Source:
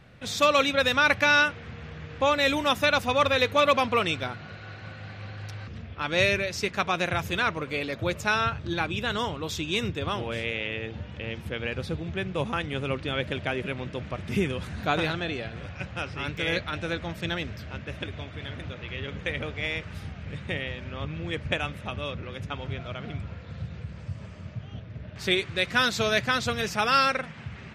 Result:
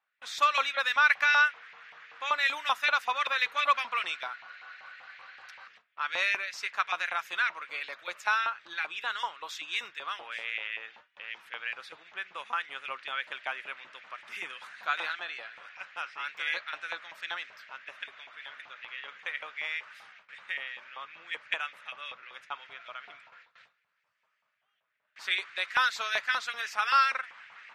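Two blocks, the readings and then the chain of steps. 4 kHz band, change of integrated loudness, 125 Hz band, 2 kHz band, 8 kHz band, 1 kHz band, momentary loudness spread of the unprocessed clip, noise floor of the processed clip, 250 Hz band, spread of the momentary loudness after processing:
-5.5 dB, -3.5 dB, under -40 dB, -1.5 dB, -8.5 dB, -2.5 dB, 17 LU, -78 dBFS, -30.5 dB, 19 LU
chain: high shelf 6500 Hz -5.5 dB; LFO high-pass saw up 5.2 Hz 880–2100 Hz; gate with hold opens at -37 dBFS; gain -6 dB

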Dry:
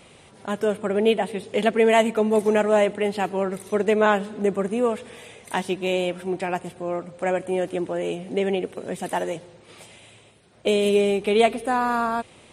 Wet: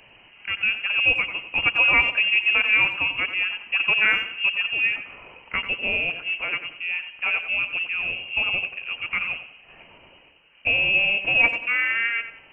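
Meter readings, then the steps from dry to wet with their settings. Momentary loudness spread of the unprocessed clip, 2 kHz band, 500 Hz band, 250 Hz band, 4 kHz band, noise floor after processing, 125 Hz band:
11 LU, +12.0 dB, -19.5 dB, -18.0 dB, +7.5 dB, -52 dBFS, -10.0 dB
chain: inverted band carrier 3000 Hz; tape echo 92 ms, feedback 44%, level -8 dB, low-pass 2100 Hz; gain -1 dB

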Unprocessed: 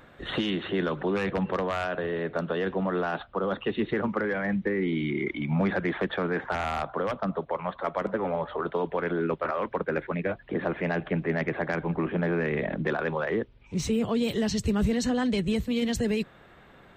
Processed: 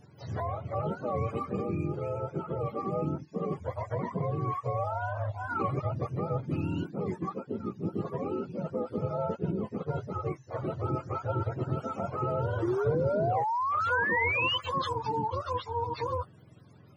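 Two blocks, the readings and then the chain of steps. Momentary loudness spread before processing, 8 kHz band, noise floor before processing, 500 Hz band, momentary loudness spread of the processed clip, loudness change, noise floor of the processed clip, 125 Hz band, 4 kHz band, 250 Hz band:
5 LU, n/a, -54 dBFS, -4.0 dB, 8 LU, -3.0 dB, -54 dBFS, +1.0 dB, -2.0 dB, -8.0 dB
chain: spectrum mirrored in octaves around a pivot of 470 Hz; painted sound rise, 12.62–14.58, 330–3100 Hz -26 dBFS; gain -3 dB

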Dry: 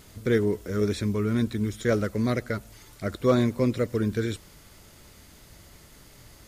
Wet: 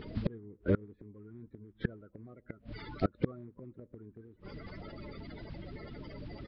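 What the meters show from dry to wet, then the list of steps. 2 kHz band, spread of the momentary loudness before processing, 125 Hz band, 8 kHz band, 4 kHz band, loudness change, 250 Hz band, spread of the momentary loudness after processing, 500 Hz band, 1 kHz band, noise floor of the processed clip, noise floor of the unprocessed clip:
-13.0 dB, 11 LU, -11.0 dB, under -35 dB, -15.0 dB, -13.5 dB, -12.5 dB, 18 LU, -14.0 dB, -11.0 dB, -68 dBFS, -52 dBFS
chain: bin magnitudes rounded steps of 30 dB; treble ducked by the level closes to 1100 Hz, closed at -25 dBFS; dynamic EQ 720 Hz, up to -5 dB, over -42 dBFS, Q 1.3; flipped gate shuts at -23 dBFS, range -31 dB; air absorption 160 m; downsampling 11025 Hz; gain +7 dB

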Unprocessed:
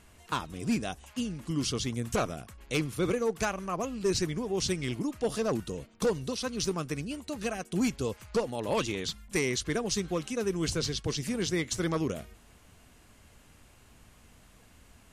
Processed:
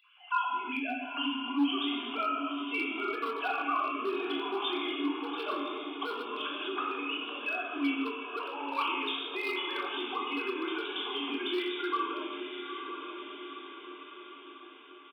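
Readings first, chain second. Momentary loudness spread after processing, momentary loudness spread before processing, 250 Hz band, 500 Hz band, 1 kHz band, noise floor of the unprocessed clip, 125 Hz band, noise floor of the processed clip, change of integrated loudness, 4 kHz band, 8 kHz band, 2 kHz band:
12 LU, 6 LU, -2.5 dB, -5.5 dB, +5.5 dB, -58 dBFS, under -35 dB, -50 dBFS, -1.5 dB, +2.0 dB, under -30 dB, +3.5 dB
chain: sine-wave speech; tilt +3 dB/oct; diffused feedback echo 0.935 s, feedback 52%, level -10 dB; non-linear reverb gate 0.42 s falling, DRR -4.5 dB; in parallel at -0.5 dB: compressor 10:1, threshold -36 dBFS, peak gain reduction 18.5 dB; on the sum: notches 50/100/150/200/250/300/350/400 Hz; overloaded stage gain 19.5 dB; steep high-pass 240 Hz 96 dB/oct; fixed phaser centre 1900 Hz, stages 6; doubler 25 ms -11 dB

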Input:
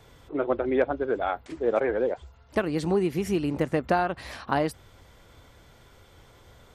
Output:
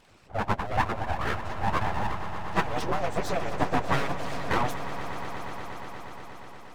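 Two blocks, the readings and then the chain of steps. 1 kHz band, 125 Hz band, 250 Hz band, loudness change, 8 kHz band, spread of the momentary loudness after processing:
+3.0 dB, +2.0 dB, -6.0 dB, -3.0 dB, +2.5 dB, 12 LU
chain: inharmonic rescaling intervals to 88%; full-wave rectifier; harmonic-percussive split harmonic -17 dB; on a send: swelling echo 0.119 s, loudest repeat 5, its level -14.5 dB; on the sum: gain +7 dB

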